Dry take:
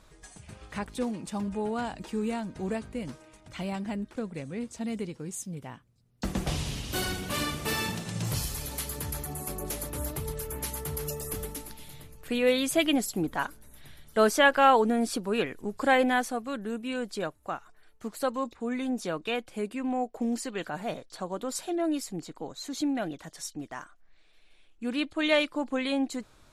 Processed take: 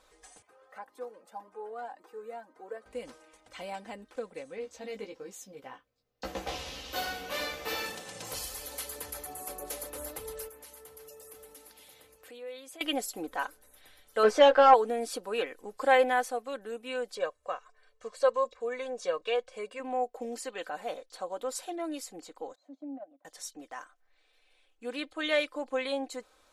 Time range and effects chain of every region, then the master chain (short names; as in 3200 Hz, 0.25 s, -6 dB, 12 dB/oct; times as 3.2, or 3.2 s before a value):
0.42–2.86 HPF 320 Hz + band shelf 4700 Hz -12.5 dB 2.5 oct + cascading flanger rising 1.9 Hz
4.56–7.86 bell 9100 Hz -14 dB 0.56 oct + doubler 15 ms -3 dB
10.48–12.81 HPF 62 Hz + compressor 3:1, threshold -46 dBFS
14.23–14.74 sample leveller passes 2 + tape spacing loss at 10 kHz 21 dB + doubler 14 ms -5 dB
17.15–19.8 LPF 8300 Hz 24 dB/oct + comb 1.8 ms, depth 63%
22.55–23.25 double band-pass 410 Hz, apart 1.2 oct + transient shaper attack 0 dB, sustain -10 dB
whole clip: resonant low shelf 310 Hz -12 dB, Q 1.5; comb 3.9 ms, depth 54%; gain -4.5 dB